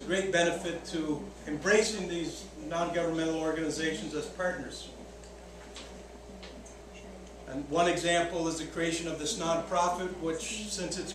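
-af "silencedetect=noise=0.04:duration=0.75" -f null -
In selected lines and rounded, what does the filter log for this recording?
silence_start: 4.54
silence_end: 7.57 | silence_duration: 3.03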